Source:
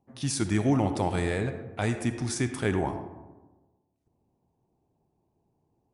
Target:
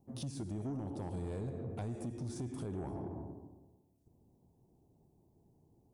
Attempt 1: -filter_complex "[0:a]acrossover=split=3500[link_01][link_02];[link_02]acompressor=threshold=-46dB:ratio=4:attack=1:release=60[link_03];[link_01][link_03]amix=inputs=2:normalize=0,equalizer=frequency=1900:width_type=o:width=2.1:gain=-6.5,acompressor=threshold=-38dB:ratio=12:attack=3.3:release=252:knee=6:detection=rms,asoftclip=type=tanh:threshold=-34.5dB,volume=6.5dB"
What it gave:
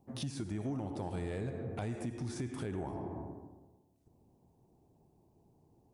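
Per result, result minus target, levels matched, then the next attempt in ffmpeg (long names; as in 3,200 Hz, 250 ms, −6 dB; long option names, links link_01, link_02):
2,000 Hz band +8.0 dB; soft clipping: distortion −8 dB
-filter_complex "[0:a]acrossover=split=3500[link_01][link_02];[link_02]acompressor=threshold=-46dB:ratio=4:attack=1:release=60[link_03];[link_01][link_03]amix=inputs=2:normalize=0,equalizer=frequency=1900:width_type=o:width=2.1:gain=-18,acompressor=threshold=-38dB:ratio=12:attack=3.3:release=252:knee=6:detection=rms,asoftclip=type=tanh:threshold=-34.5dB,volume=6.5dB"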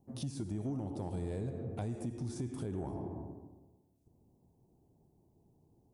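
soft clipping: distortion −8 dB
-filter_complex "[0:a]acrossover=split=3500[link_01][link_02];[link_02]acompressor=threshold=-46dB:ratio=4:attack=1:release=60[link_03];[link_01][link_03]amix=inputs=2:normalize=0,equalizer=frequency=1900:width_type=o:width=2.1:gain=-18,acompressor=threshold=-38dB:ratio=12:attack=3.3:release=252:knee=6:detection=rms,asoftclip=type=tanh:threshold=-40.5dB,volume=6.5dB"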